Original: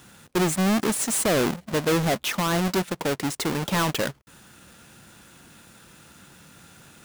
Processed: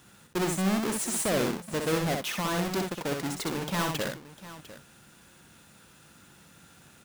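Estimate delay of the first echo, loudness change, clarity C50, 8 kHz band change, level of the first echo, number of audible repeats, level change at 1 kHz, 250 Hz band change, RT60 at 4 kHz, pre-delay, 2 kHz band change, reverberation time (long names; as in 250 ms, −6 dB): 63 ms, −5.0 dB, no reverb audible, −5.0 dB, −4.5 dB, 2, −5.0 dB, −5.0 dB, no reverb audible, no reverb audible, −5.0 dB, no reverb audible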